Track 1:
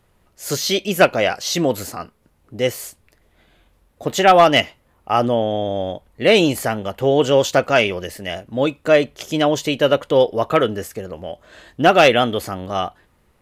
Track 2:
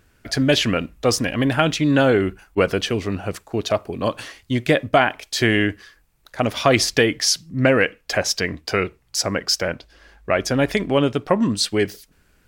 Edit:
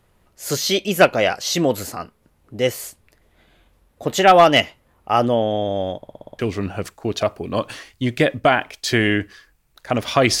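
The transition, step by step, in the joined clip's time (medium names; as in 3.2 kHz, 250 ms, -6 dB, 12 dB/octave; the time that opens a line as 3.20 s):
track 1
5.97 s: stutter in place 0.06 s, 7 plays
6.39 s: go over to track 2 from 2.88 s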